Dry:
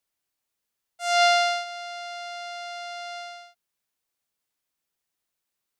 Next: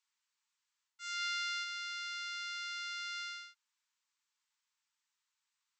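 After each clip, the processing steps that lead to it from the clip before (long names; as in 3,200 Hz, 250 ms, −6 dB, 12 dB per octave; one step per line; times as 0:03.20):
brick-wall band-pass 840–8,300 Hz
reversed playback
downward compressor 4 to 1, threshold −36 dBFS, peak gain reduction 15.5 dB
reversed playback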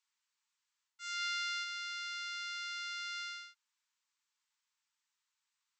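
no processing that can be heard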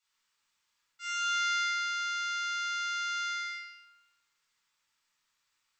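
rectangular room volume 1,000 cubic metres, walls mixed, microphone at 6.9 metres
level −2.5 dB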